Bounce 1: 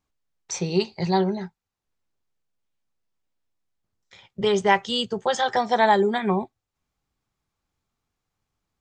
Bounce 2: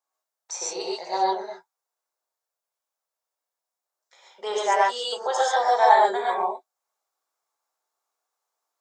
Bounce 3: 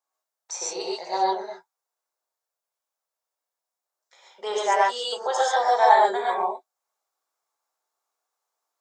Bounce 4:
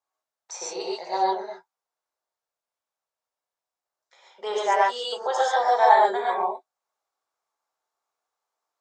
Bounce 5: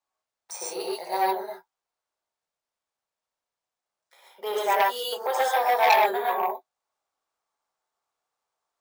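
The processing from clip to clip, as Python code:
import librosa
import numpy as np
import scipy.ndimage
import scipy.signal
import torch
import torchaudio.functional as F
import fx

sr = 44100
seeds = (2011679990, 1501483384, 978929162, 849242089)

y1 = scipy.signal.sosfilt(scipy.signal.butter(4, 570.0, 'highpass', fs=sr, output='sos'), x)
y1 = fx.peak_eq(y1, sr, hz=2700.0, db=-11.5, octaves=1.6)
y1 = fx.rev_gated(y1, sr, seeds[0], gate_ms=160, shape='rising', drr_db=-4.5)
y2 = y1
y3 = fx.high_shelf(y2, sr, hz=7700.0, db=-11.5)
y4 = np.repeat(y3[::3], 3)[:len(y3)]
y4 = fx.transformer_sat(y4, sr, knee_hz=2300.0)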